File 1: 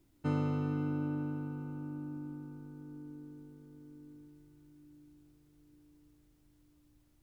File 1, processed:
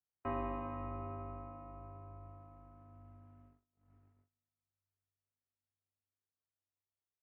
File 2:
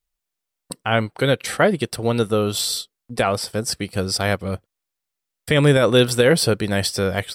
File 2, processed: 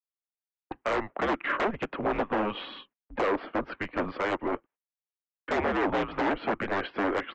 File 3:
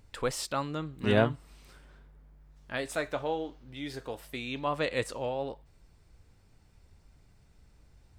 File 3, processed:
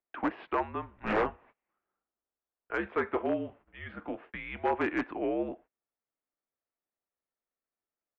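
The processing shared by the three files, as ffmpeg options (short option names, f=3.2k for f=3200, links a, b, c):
-filter_complex "[0:a]highpass=f=190:t=q:w=0.5412,highpass=f=190:t=q:w=1.307,lowpass=f=3.2k:t=q:w=0.5176,lowpass=f=3.2k:t=q:w=0.7071,lowpass=f=3.2k:t=q:w=1.932,afreqshift=-200,agate=range=-28dB:threshold=-53dB:ratio=16:detection=peak,acompressor=threshold=-19dB:ratio=16,aresample=16000,aeval=exprs='0.0708*(abs(mod(val(0)/0.0708+3,4)-2)-1)':c=same,aresample=44100,acrossover=split=280 2300:gain=0.178 1 0.1[a][b][c];[a][b][c]amix=inputs=3:normalize=0,volume=5dB"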